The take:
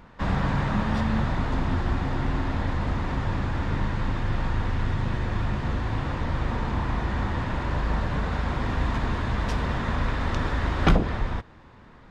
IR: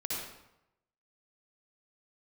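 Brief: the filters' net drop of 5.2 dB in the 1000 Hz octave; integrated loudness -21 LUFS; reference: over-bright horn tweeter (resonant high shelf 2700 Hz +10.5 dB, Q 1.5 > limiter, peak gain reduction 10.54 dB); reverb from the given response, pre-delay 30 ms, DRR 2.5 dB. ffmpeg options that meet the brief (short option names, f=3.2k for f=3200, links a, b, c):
-filter_complex "[0:a]equalizer=f=1k:t=o:g=-5,asplit=2[a][b];[1:a]atrim=start_sample=2205,adelay=30[c];[b][c]afir=irnorm=-1:irlink=0,volume=-6dB[d];[a][d]amix=inputs=2:normalize=0,highshelf=f=2.7k:t=q:w=1.5:g=10.5,volume=6dB,alimiter=limit=-10dB:level=0:latency=1"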